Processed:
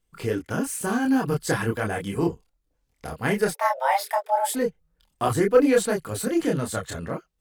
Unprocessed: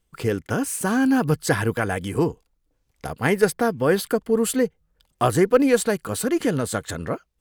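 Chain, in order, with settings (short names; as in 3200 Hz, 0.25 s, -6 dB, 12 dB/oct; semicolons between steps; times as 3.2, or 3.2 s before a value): 3.51–4.55 frequency shift +400 Hz; chorus voices 4, 0.64 Hz, delay 27 ms, depth 3.3 ms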